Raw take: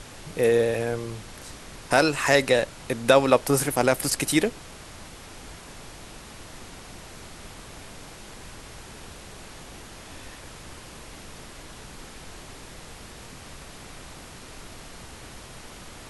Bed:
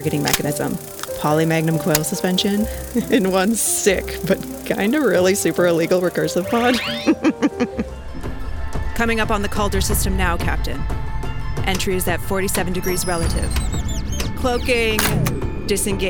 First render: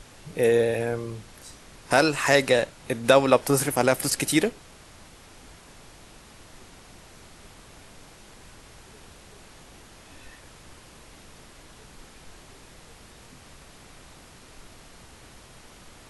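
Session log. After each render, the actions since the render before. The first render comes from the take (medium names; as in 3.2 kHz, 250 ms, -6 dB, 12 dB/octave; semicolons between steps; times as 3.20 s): noise print and reduce 6 dB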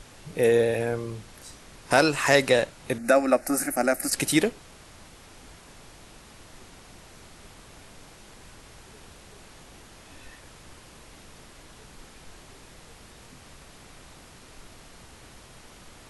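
2.98–4.13 s: static phaser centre 660 Hz, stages 8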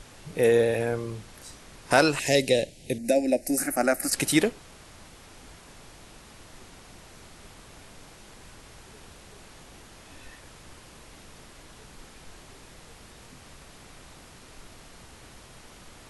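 2.19–3.58 s: Butterworth band-stop 1.2 kHz, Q 0.67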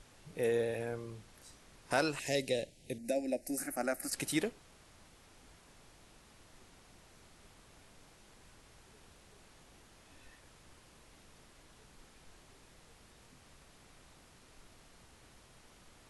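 trim -11.5 dB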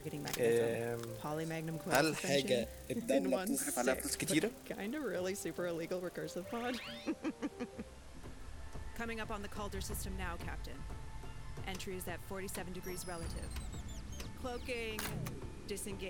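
add bed -23 dB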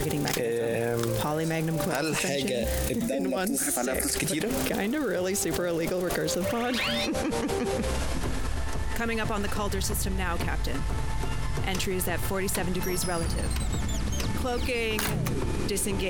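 level flattener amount 100%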